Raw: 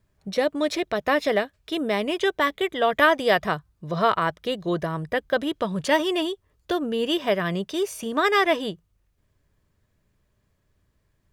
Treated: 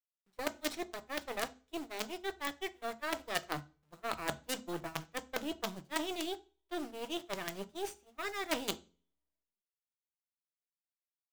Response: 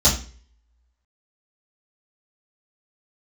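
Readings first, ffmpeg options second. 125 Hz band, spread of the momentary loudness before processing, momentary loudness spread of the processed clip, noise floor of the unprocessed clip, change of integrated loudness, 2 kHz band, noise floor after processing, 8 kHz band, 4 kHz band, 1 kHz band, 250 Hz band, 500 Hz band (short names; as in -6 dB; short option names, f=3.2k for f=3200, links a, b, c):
-17.5 dB, 10 LU, 7 LU, -70 dBFS, -15.5 dB, -15.5 dB, under -85 dBFS, -3.5 dB, -12.0 dB, -16.0 dB, -15.5 dB, -18.0 dB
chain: -filter_complex "[0:a]areverse,acompressor=threshold=-30dB:ratio=12,areverse,aresample=22050,aresample=44100,acrusher=bits=5:dc=4:mix=0:aa=0.000001,agate=range=-27dB:threshold=-36dB:ratio=16:detection=peak,lowshelf=f=120:g=-12,asplit=2[a][b];[1:a]atrim=start_sample=2205,asetrate=48510,aresample=44100[c];[b][c]afir=irnorm=-1:irlink=0,volume=-28dB[d];[a][d]amix=inputs=2:normalize=0"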